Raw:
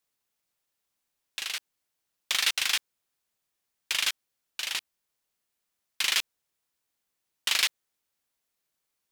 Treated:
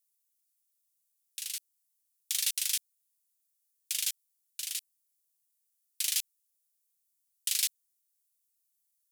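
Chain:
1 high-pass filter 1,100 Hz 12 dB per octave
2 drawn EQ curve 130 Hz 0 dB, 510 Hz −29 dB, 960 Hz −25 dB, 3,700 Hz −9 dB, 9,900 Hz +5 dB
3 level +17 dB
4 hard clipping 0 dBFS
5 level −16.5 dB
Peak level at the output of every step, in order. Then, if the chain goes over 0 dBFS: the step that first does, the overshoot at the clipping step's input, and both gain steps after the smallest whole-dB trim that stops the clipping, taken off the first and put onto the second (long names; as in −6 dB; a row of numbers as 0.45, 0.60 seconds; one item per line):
−7.5, −13.5, +3.5, 0.0, −16.5 dBFS
step 3, 3.5 dB
step 3 +13 dB, step 5 −12.5 dB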